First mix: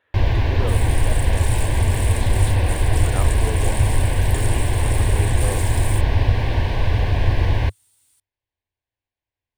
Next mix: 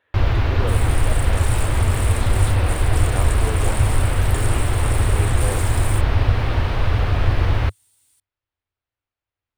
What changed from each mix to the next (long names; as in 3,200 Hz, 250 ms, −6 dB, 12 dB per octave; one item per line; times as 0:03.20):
first sound: remove Butterworth band-reject 1,300 Hz, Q 3.2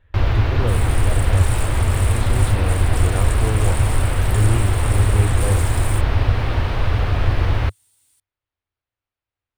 speech: remove high-pass filter 390 Hz 12 dB per octave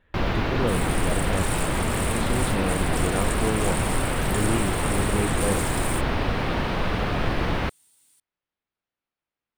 master: add low shelf with overshoot 130 Hz −8 dB, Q 3